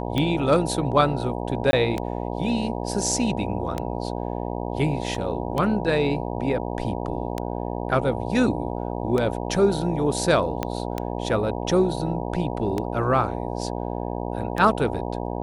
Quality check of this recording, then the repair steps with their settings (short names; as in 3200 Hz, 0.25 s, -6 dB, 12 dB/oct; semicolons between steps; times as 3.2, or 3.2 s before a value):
buzz 60 Hz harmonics 16 -29 dBFS
tick 33 1/3 rpm -12 dBFS
1.71–1.73 gap 20 ms
5.15 gap 2.4 ms
10.63 pop -11 dBFS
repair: de-click; de-hum 60 Hz, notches 16; interpolate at 1.71, 20 ms; interpolate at 5.15, 2.4 ms